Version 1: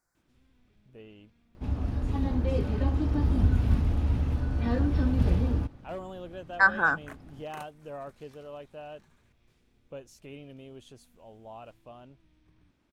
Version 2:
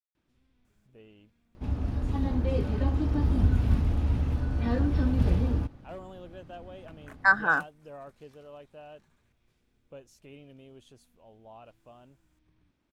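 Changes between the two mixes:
speech: entry +0.65 s; first sound -4.5 dB

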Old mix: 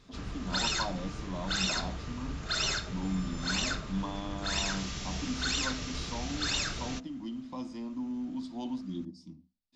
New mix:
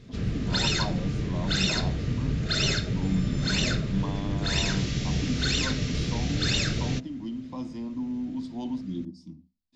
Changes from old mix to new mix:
background: add graphic EQ 125/250/500/1000/2000/4000 Hz +10/+6/+7/-8/+6/+4 dB; master: add low shelf 380 Hz +6 dB

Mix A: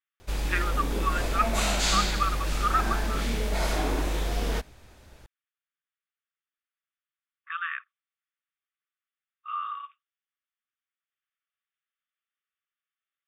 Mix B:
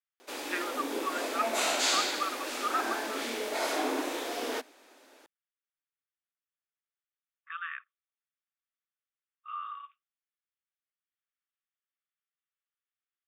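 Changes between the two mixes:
speech -6.0 dB; background: add elliptic high-pass 260 Hz, stop band 40 dB

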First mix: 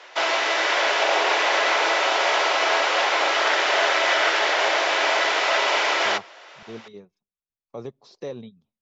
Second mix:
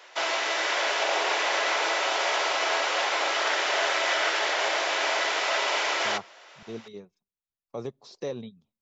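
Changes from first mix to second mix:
background -6.0 dB; master: remove air absorption 67 m

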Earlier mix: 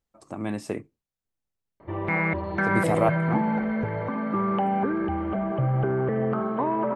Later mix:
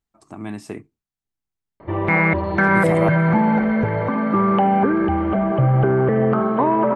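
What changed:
speech: add bell 530 Hz -12.5 dB 0.26 oct; background +8.0 dB

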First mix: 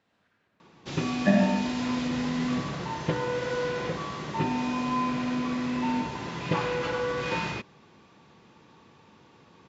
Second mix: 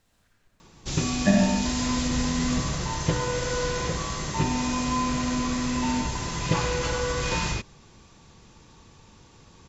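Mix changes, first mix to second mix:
second sound +5.0 dB; master: remove BPF 170–3100 Hz

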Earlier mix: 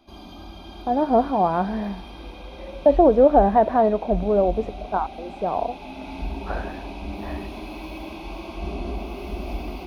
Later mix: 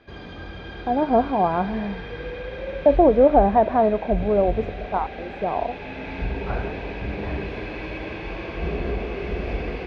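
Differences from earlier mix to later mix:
background: remove fixed phaser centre 470 Hz, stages 6; master: add air absorption 110 m

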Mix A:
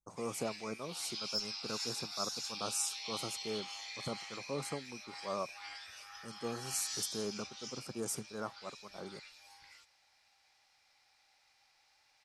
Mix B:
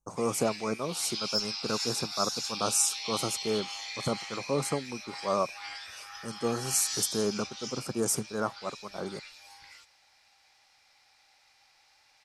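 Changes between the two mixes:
speech +10.0 dB; background +6.5 dB

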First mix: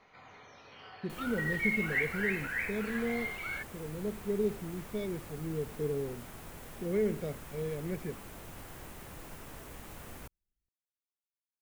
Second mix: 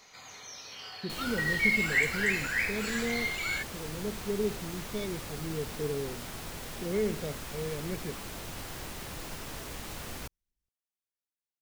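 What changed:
first sound: remove air absorption 270 m; second sound +5.5 dB; master: add bell 4600 Hz +8.5 dB 1.4 oct

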